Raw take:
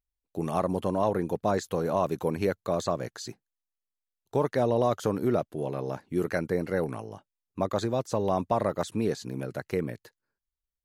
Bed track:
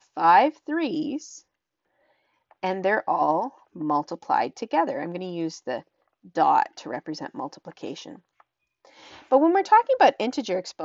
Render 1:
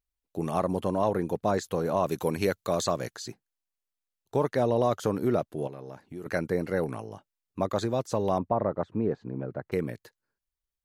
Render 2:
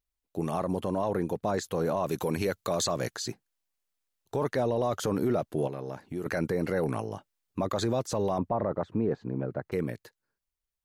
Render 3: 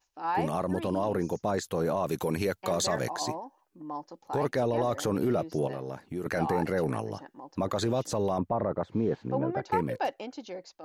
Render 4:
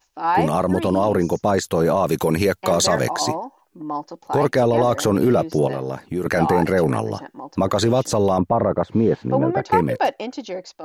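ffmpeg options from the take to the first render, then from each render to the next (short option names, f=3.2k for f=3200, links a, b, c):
-filter_complex "[0:a]asettb=1/sr,asplit=3[a][b][c];[a]atrim=end=2.074[d];[b]atrim=start=2.07:end=3.16,asetpts=PTS-STARTPTS,afade=t=in:d=0.004:c=qsin,afade=t=out:st=1.086:d=0.004:c=qsin,highshelf=f=2.3k:g=8[e];[c]atrim=start=3.156[f];[d][e]acrossfade=d=0.004:c1=hsin:c2=qsin[g];[g][f]acrossfade=d=0.004:c1=qsin:c2=hsin,asettb=1/sr,asplit=3[h][i][j];[h]atrim=end=5.674[k];[i]atrim=start=5.67:end=6.26,asetpts=PTS-STARTPTS,afade=t=in:d=0.004:c=qsin,afade=t=out:st=0.586:d=0.004:c=qsin,acompressor=threshold=-41dB:ratio=2.5:attack=3.2:release=140:knee=1:detection=peak[l];[j]atrim=start=6.256[m];[k][l]acrossfade=d=0.004:c1=hsin:c2=qsin[n];[n][m]acrossfade=d=0.004:c1=qsin:c2=hsin,asettb=1/sr,asplit=3[o][p][q];[o]atrim=end=8.384[r];[p]atrim=start=8.38:end=9.72,asetpts=PTS-STARTPTS,afade=t=in:d=0.004:c=qsin,afade=t=out:st=1.336:d=0.004:c=qsin,lowpass=1.2k[s];[q]atrim=start=9.716[t];[r][s]acrossfade=d=0.004:c1=hsin:c2=qsin[u];[u][t]acrossfade=d=0.004:c1=qsin:c2=hsin"
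-af "dynaudnorm=f=530:g=9:m=5dB,alimiter=limit=-18.5dB:level=0:latency=1:release=16"
-filter_complex "[1:a]volume=-13.5dB[a];[0:a][a]amix=inputs=2:normalize=0"
-af "volume=10.5dB"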